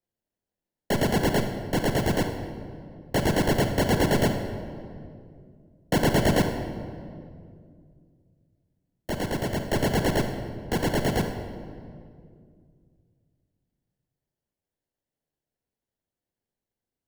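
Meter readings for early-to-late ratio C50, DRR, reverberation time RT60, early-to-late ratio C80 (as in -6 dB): 6.0 dB, 5.0 dB, 2.3 s, 8.0 dB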